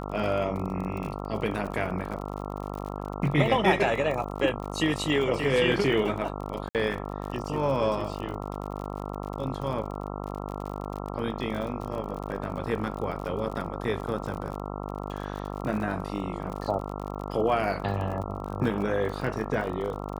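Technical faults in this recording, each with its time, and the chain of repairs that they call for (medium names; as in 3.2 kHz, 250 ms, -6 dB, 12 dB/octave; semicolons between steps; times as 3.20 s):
buzz 50 Hz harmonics 27 -35 dBFS
crackle 45 per s -34 dBFS
6.69–6.75 s: dropout 58 ms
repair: de-click; de-hum 50 Hz, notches 27; interpolate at 6.69 s, 58 ms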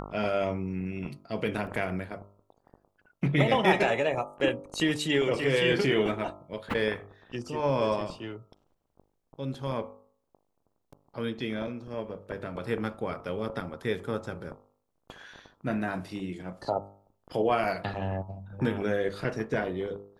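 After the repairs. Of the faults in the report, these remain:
nothing left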